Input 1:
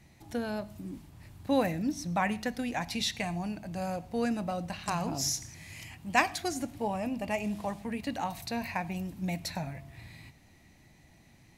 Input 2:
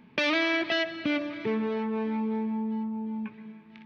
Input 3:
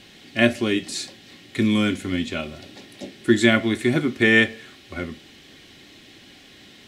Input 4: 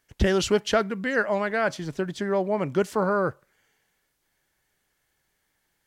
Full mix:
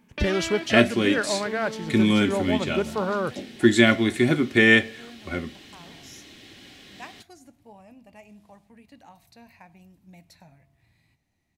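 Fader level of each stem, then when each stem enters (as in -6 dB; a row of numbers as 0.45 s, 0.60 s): -16.5 dB, -6.5 dB, 0.0 dB, -2.5 dB; 0.85 s, 0.00 s, 0.35 s, 0.00 s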